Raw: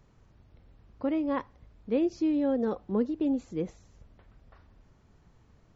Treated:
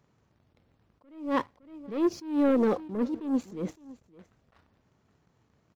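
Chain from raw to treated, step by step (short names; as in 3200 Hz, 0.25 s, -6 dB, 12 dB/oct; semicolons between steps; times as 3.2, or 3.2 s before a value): HPF 110 Hz 12 dB/oct; sample leveller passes 2; on a send: echo 0.562 s -20.5 dB; on the sum: attack slew limiter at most 120 dB/s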